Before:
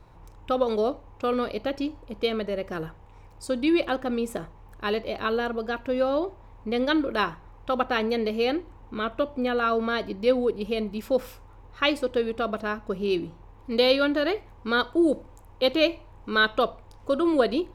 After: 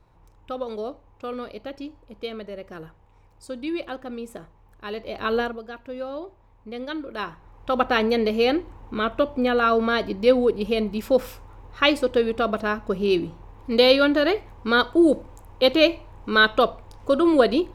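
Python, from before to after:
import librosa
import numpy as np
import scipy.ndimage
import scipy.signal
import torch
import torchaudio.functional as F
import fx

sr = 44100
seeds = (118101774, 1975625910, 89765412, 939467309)

y = fx.gain(x, sr, db=fx.line((4.88, -6.5), (5.4, 4.0), (5.62, -8.0), (7.05, -8.0), (7.84, 4.5)))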